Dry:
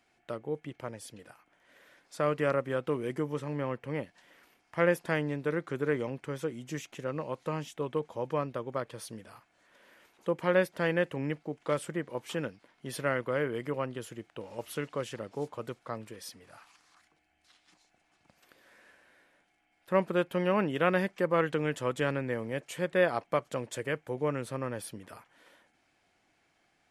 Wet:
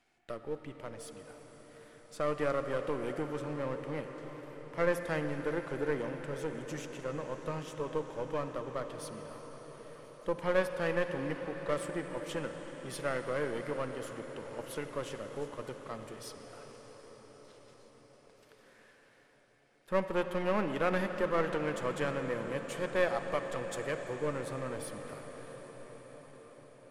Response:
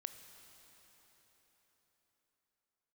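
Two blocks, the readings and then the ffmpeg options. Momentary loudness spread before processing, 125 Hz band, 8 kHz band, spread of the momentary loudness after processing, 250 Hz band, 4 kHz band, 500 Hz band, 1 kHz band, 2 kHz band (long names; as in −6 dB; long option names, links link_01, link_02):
14 LU, −5.0 dB, −1.5 dB, 19 LU, −4.0 dB, −2.5 dB, −2.5 dB, −2.5 dB, −3.5 dB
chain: -filter_complex "[0:a]aeval=exprs='if(lt(val(0),0),0.447*val(0),val(0))':channel_layout=same[link_01];[1:a]atrim=start_sample=2205,asetrate=22050,aresample=44100[link_02];[link_01][link_02]afir=irnorm=-1:irlink=0"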